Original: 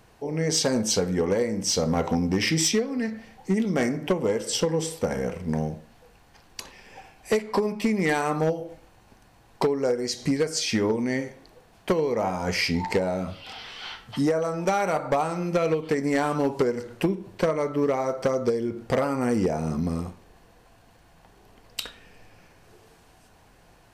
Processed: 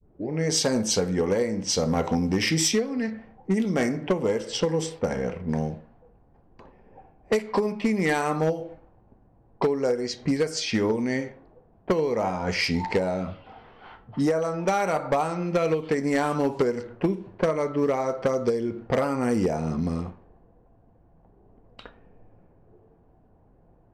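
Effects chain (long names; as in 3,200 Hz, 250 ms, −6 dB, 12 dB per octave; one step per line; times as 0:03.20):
turntable start at the beginning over 0.31 s
low-pass that shuts in the quiet parts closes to 520 Hz, open at −20 dBFS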